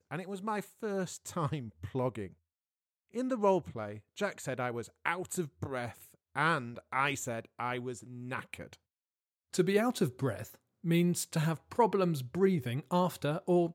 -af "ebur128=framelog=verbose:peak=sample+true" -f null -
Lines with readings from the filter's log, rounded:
Integrated loudness:
  I:         -33.7 LUFS
  Threshold: -44.1 LUFS
Loudness range:
  LRA:         4.5 LU
  Threshold: -54.6 LUFS
  LRA low:   -36.2 LUFS
  LRA high:  -31.7 LUFS
Sample peak:
  Peak:      -12.9 dBFS
True peak:
  Peak:      -12.9 dBFS